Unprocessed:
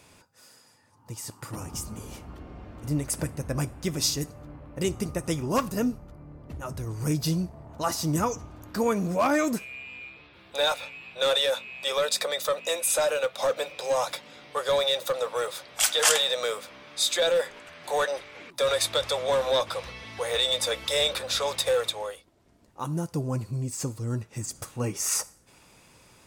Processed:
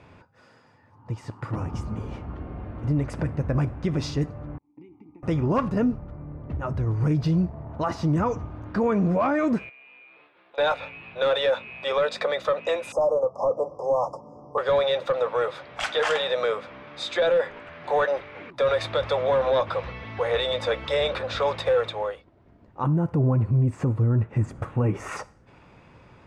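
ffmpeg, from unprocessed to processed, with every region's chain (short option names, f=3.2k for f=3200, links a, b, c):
-filter_complex "[0:a]asettb=1/sr,asplit=3[a][b][c];[a]atrim=end=4.584[d];[b]atrim=start=4.58:end=5.23,asetpts=PTS-STARTPTS,afade=t=in:d=0.004:c=qsin,afade=t=out:st=0.646:d=0.004:c=qsin,agate=range=-33dB:threshold=-34dB:ratio=3:release=100:detection=peak,acompressor=threshold=-37dB:ratio=10:attack=3.2:release=140:knee=1:detection=peak,asplit=3[e][f][g];[e]bandpass=f=300:t=q:w=8,volume=0dB[h];[f]bandpass=f=870:t=q:w=8,volume=-6dB[i];[g]bandpass=f=2.24k:t=q:w=8,volume=-9dB[j];[h][i][j]amix=inputs=3:normalize=0[k];[c]atrim=start=5.226[l];[d][k]acrossfade=d=0.004:c1=hsin:c2=qsin[m];[m][l]acrossfade=d=0.004:c1=qsin:c2=hsin,asettb=1/sr,asplit=3[n][o][p];[n]atrim=end=9.694[q];[o]atrim=start=9.69:end=10.58,asetpts=PTS-STARTPTS,afade=t=in:d=0.004:c=qsin,afade=t=out:st=0.886:d=0.004:c=qsin,agate=range=-33dB:threshold=-48dB:ratio=3:release=100:detection=peak,acompressor=threshold=-50dB:ratio=4:attack=3.2:release=140:knee=1:detection=peak,highpass=420,lowpass=7.2k[r];[p]atrim=start=10.576[s];[q][r]acrossfade=d=0.004:c1=hsin:c2=qsin[t];[t][s]acrossfade=d=0.004:c1=qsin:c2=hsin,asettb=1/sr,asplit=3[u][v][w];[u]atrim=end=12.924[x];[v]atrim=start=12.92:end=14.58,asetpts=PTS-STARTPTS,afade=t=in:d=0.004:c=qsin,afade=t=out:st=1.656:d=0.004:c=qsin,asuperstop=centerf=2500:order=20:qfactor=0.61,highshelf=f=12k:g=-7.5[y];[w]atrim=start=14.576[z];[x][y]acrossfade=d=0.004:c1=hsin:c2=qsin[aa];[aa][z]acrossfade=d=0.004:c1=qsin:c2=hsin,asettb=1/sr,asplit=3[ab][ac][ad];[ab]atrim=end=22.834[ae];[ac]atrim=start=22.83:end=25.17,asetpts=PTS-STARTPTS,afade=t=in:d=0.004:c=qsin,afade=t=out:st=2.336:d=0.004:c=qsin,equalizer=f=5k:t=o:w=1.2:g=-13,acontrast=30[af];[ad]atrim=start=25.166[ag];[ae][af]acrossfade=d=0.004:c1=hsin:c2=qsin[ah];[ah][ag]acrossfade=d=0.004:c1=qsin:c2=hsin,lowpass=2k,equalizer=f=100:w=1:g=4,alimiter=limit=-21dB:level=0:latency=1:release=45,volume=5.5dB"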